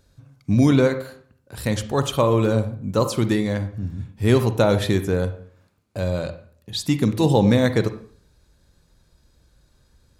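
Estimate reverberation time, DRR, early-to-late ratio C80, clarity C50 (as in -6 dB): 0.55 s, 9.5 dB, 15.5 dB, 11.5 dB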